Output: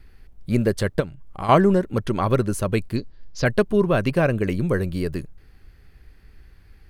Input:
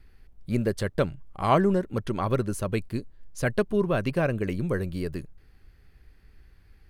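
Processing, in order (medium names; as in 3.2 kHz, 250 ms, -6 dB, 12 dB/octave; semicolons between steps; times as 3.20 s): 1.00–1.49 s: compression 2.5:1, threshold -35 dBFS, peak gain reduction 11 dB; 2.96–3.46 s: resonant high shelf 7.1 kHz -13.5 dB, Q 3; trim +5.5 dB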